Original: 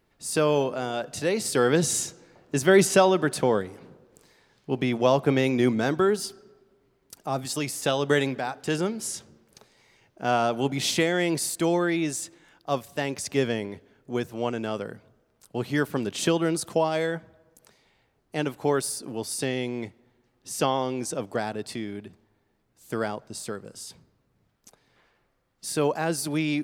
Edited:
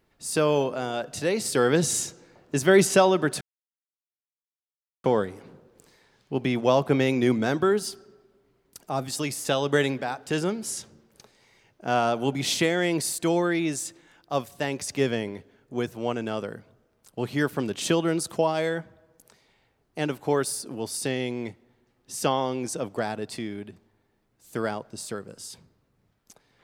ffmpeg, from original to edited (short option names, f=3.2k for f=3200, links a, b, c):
-filter_complex "[0:a]asplit=2[a][b];[a]atrim=end=3.41,asetpts=PTS-STARTPTS,afade=t=out:st=3.406:d=0.004:c=hsin,apad=pad_dur=1.63[c];[b]atrim=start=3.41,asetpts=PTS-STARTPTS,afade=t=in:d=0.004:c=hsin[d];[c][d]concat=n=2:v=0:a=1"